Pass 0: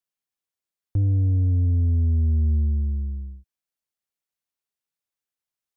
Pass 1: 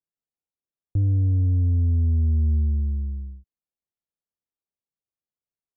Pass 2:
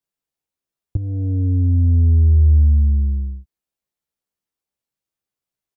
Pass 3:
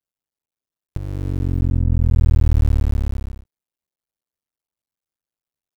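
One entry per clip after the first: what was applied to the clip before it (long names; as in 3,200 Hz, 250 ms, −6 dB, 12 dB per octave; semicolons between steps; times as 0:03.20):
Bessel low-pass filter 550 Hz, order 2
double-tracking delay 15 ms −3 dB; level +5 dB
sub-harmonics by changed cycles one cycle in 2, muted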